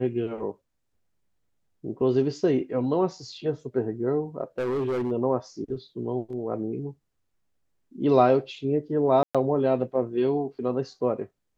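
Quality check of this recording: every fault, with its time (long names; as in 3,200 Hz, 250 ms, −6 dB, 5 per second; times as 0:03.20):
0:04.58–0:05.12: clipping −23.5 dBFS
0:09.23–0:09.35: drop-out 116 ms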